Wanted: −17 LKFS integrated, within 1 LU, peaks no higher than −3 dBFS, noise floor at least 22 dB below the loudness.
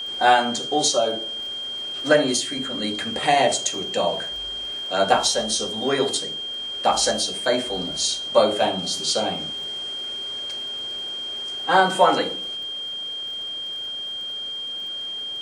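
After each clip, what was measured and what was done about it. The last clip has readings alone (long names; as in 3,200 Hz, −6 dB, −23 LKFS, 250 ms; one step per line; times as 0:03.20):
crackle rate 31 per second; interfering tone 3,200 Hz; level of the tone −28 dBFS; integrated loudness −22.5 LKFS; sample peak −3.0 dBFS; target loudness −17.0 LKFS
→ click removal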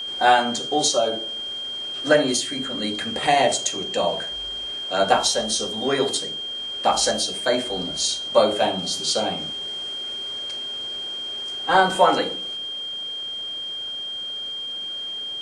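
crackle rate 0 per second; interfering tone 3,200 Hz; level of the tone −28 dBFS
→ notch filter 3,200 Hz, Q 30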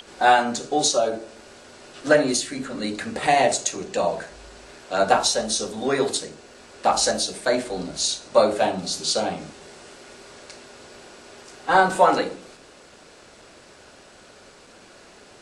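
interfering tone none found; integrated loudness −22.0 LKFS; sample peak −3.0 dBFS; target loudness −17.0 LKFS
→ level +5 dB
brickwall limiter −3 dBFS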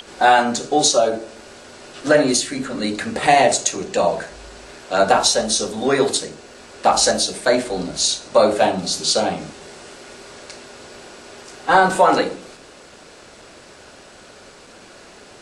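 integrated loudness −17.5 LKFS; sample peak −3.0 dBFS; background noise floor −44 dBFS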